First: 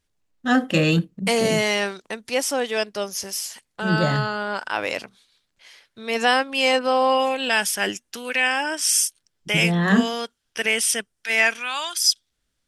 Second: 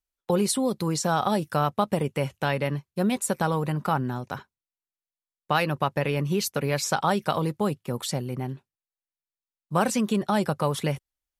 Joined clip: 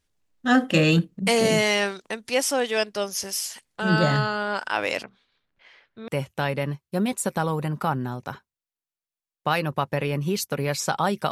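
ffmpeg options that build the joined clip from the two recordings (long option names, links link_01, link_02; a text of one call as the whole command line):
ffmpeg -i cue0.wav -i cue1.wav -filter_complex "[0:a]asettb=1/sr,asplit=3[link_01][link_02][link_03];[link_01]atrim=end=5.034[link_04];[link_02]atrim=start=5.03:end=6.08,asetpts=PTS-STARTPTS,afade=type=in:duration=0.004:curve=qsin,afade=type=out:start_time=1.046:duration=0.004:curve=qsin,lowpass=2300[link_05];[link_03]atrim=start=6.076[link_06];[link_04][link_05]acrossfade=duration=0.004:curve1=hsin:curve2=qsin[link_07];[link_07][link_06]acrossfade=duration=0.004:curve1=qsin:curve2=hsin,apad=whole_dur=11.31,atrim=end=11.31,atrim=end=6.082[link_08];[1:a]atrim=start=2.118:end=7.35[link_09];[link_08][link_09]acrossfade=duration=0.004:curve1=hsin:curve2=hsin" out.wav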